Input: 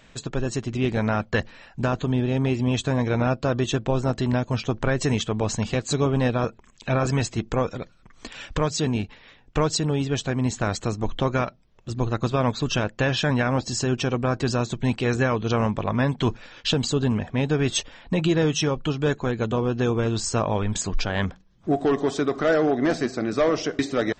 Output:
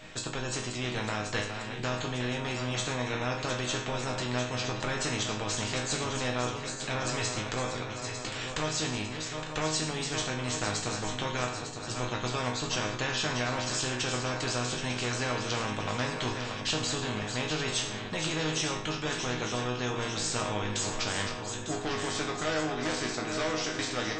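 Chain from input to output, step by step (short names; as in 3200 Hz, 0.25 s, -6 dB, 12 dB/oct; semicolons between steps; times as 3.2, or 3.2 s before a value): regenerating reverse delay 0.45 s, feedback 67%, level -12 dB; resonator bank G#2 minor, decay 0.37 s; spectral compressor 2:1; gain +6.5 dB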